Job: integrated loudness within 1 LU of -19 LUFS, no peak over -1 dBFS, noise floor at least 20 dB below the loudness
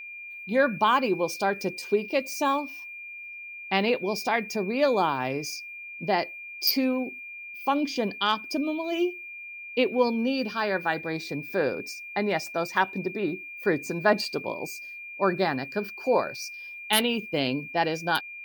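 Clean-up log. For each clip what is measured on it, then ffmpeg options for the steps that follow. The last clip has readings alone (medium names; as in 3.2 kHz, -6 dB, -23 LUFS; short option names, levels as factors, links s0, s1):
steady tone 2.4 kHz; tone level -38 dBFS; loudness -27.0 LUFS; peak level -7.0 dBFS; loudness target -19.0 LUFS
-> -af "bandreject=f=2400:w=30"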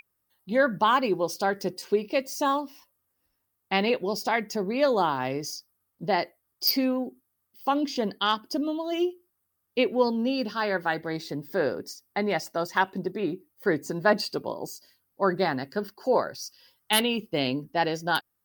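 steady tone not found; loudness -27.0 LUFS; peak level -7.5 dBFS; loudness target -19.0 LUFS
-> -af "volume=2.51,alimiter=limit=0.891:level=0:latency=1"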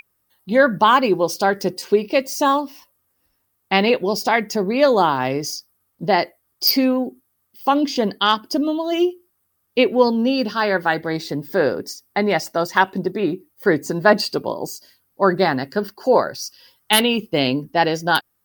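loudness -19.5 LUFS; peak level -1.0 dBFS; noise floor -70 dBFS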